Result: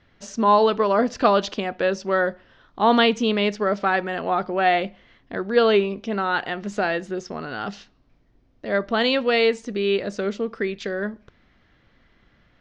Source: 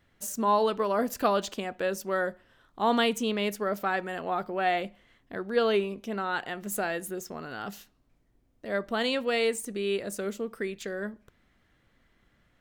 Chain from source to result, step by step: steep low-pass 5.7 kHz 36 dB/octave; trim +7.5 dB

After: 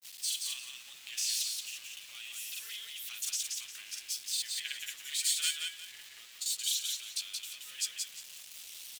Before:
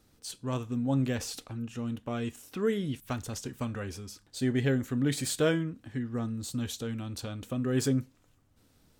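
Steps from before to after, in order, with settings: jump at every zero crossing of -39 dBFS; Chebyshev high-pass 2.7 kHz, order 3; in parallel at -0.5 dB: level held to a coarse grid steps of 21 dB; on the sum: granulator 142 ms, grains 18 per s, spray 35 ms, pitch spread up and down by 0 st; small samples zeroed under -58 dBFS; feedback delay 176 ms, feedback 26%, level -3.5 dB; trim +3.5 dB

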